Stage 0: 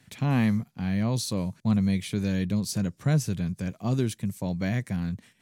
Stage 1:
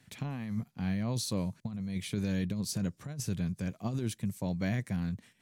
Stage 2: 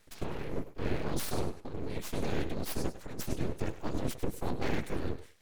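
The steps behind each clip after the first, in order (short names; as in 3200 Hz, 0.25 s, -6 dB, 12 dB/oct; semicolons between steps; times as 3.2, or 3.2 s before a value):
negative-ratio compressor -26 dBFS, ratio -0.5; gain -5.5 dB
whisperiser; thinning echo 0.1 s, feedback 25%, high-pass 190 Hz, level -12 dB; full-wave rectifier; gain +2 dB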